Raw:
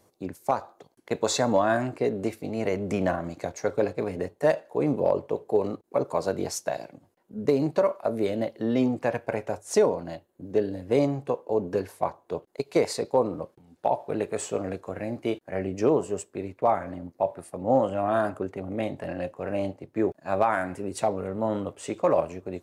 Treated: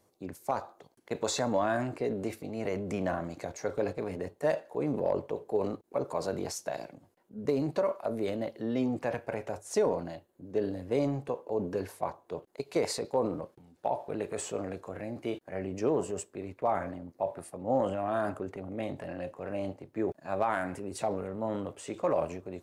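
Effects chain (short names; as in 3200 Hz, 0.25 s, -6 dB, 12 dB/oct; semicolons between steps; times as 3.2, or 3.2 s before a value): transient shaper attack 0 dB, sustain +6 dB; gain -6.5 dB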